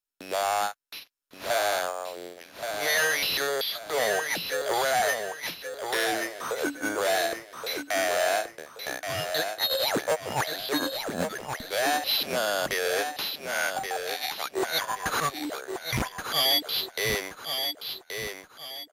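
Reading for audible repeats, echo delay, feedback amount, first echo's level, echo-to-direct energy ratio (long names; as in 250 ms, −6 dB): 4, 1,126 ms, 34%, −6.5 dB, −6.0 dB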